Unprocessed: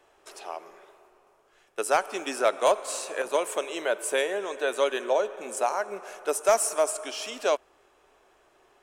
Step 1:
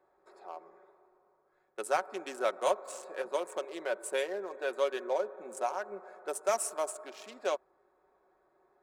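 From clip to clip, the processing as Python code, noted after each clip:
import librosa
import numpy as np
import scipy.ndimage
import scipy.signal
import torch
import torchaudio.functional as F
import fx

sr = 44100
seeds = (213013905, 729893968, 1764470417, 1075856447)

y = fx.wiener(x, sr, points=15)
y = fx.highpass(y, sr, hz=82.0, slope=6)
y = y + 0.44 * np.pad(y, (int(5.4 * sr / 1000.0), 0))[:len(y)]
y = y * librosa.db_to_amplitude(-7.5)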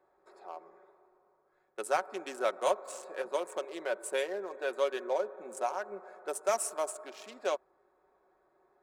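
y = x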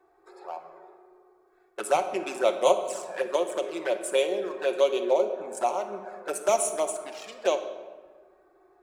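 y = fx.env_flanger(x, sr, rest_ms=2.7, full_db=-30.5)
y = fx.room_shoebox(y, sr, seeds[0], volume_m3=1200.0, walls='mixed', distance_m=0.81)
y = y * librosa.db_to_amplitude(9.0)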